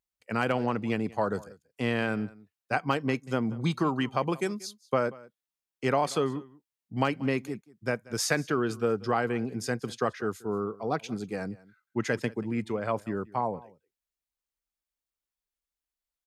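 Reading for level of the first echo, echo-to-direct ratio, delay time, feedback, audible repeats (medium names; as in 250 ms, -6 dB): -21.5 dB, -21.5 dB, 185 ms, no regular repeats, 1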